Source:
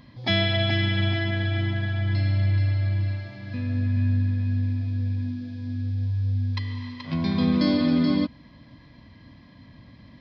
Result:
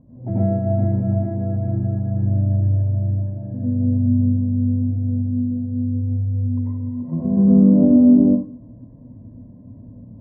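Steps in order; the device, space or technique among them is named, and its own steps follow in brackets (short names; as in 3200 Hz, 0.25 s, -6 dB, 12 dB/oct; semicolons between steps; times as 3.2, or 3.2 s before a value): treble ducked by the level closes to 2400 Hz, closed at -20.5 dBFS; next room (LPF 610 Hz 24 dB/oct; reverb RT60 0.45 s, pre-delay 83 ms, DRR -6.5 dB); 7.02–7.83 comb 5.7 ms, depth 54%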